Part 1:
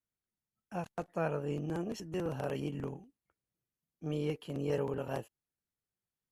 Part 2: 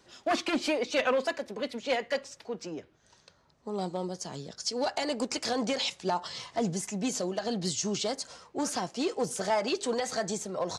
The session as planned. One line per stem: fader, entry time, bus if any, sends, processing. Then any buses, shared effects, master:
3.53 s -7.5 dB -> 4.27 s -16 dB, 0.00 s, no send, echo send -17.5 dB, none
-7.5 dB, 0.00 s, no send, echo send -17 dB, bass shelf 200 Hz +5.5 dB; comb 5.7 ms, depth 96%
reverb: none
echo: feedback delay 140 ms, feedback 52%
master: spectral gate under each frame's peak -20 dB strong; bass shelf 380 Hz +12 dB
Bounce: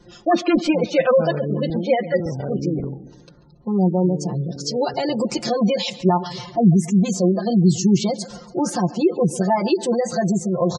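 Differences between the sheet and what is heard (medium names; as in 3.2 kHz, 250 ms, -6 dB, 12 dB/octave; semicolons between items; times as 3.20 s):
stem 1 -7.5 dB -> +2.5 dB; stem 2 -7.5 dB -> +2.0 dB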